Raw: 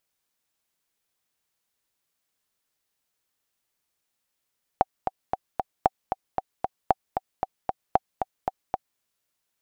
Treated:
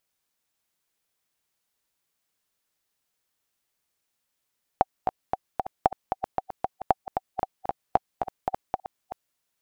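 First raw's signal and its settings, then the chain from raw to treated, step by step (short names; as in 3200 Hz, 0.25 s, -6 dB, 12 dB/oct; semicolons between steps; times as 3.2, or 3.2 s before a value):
metronome 229 bpm, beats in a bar 4, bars 4, 762 Hz, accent 7 dB -4.5 dBFS
reverse delay 0.55 s, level -10 dB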